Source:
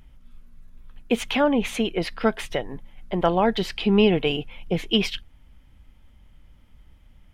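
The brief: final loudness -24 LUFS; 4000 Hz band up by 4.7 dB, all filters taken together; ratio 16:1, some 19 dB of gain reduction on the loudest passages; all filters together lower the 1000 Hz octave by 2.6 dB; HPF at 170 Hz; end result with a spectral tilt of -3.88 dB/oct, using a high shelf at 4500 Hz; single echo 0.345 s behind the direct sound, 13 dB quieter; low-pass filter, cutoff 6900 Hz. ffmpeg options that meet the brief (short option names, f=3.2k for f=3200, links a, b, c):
-af "highpass=170,lowpass=6.9k,equalizer=f=1k:t=o:g=-4,equalizer=f=4k:t=o:g=6,highshelf=f=4.5k:g=3.5,acompressor=threshold=-32dB:ratio=16,aecho=1:1:345:0.224,volume=13dB"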